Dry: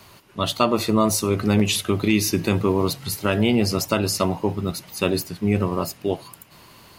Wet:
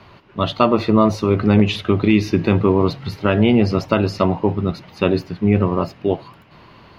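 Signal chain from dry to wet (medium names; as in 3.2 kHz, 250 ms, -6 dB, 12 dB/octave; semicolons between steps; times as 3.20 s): distance through air 290 m; trim +5.5 dB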